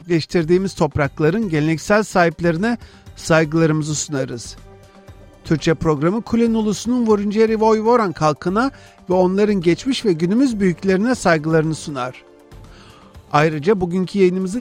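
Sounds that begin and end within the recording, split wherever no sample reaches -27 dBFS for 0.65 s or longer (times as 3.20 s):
5.46–12.10 s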